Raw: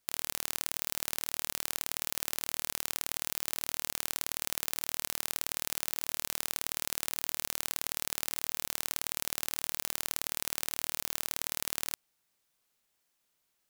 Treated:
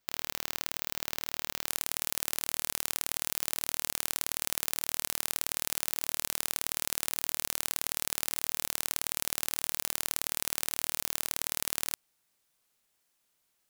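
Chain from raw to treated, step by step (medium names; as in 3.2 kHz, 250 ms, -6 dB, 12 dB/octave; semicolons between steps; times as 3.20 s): peaking EQ 10 kHz -11 dB 0.75 oct, from 1.67 s +2 dB; trim +1.5 dB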